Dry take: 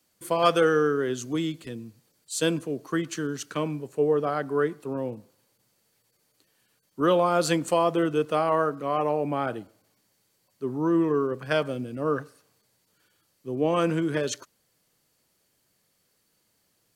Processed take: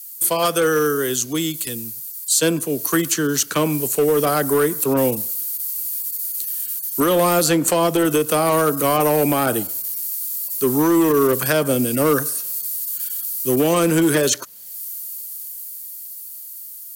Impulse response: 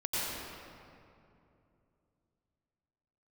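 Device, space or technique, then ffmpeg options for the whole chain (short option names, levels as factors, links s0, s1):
FM broadcast chain: -filter_complex "[0:a]highpass=47,dynaudnorm=f=480:g=13:m=5.01,acrossover=split=170|400|1800|5300[s0][s1][s2][s3][s4];[s0]acompressor=threshold=0.0178:ratio=4[s5];[s1]acompressor=threshold=0.126:ratio=4[s6];[s2]acompressor=threshold=0.0891:ratio=4[s7];[s3]acompressor=threshold=0.00631:ratio=4[s8];[s4]acompressor=threshold=0.00158:ratio=4[s9];[s5][s6][s7][s8][s9]amix=inputs=5:normalize=0,aemphasis=mode=production:type=75fm,alimiter=limit=0.224:level=0:latency=1:release=192,asoftclip=type=hard:threshold=0.15,lowpass=f=15000:w=0.5412,lowpass=f=15000:w=1.3066,aemphasis=mode=production:type=75fm,volume=1.88"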